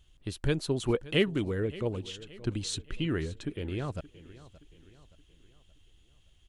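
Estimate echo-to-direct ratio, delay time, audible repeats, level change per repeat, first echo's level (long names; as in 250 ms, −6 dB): −17.5 dB, 573 ms, 3, −7.0 dB, −18.5 dB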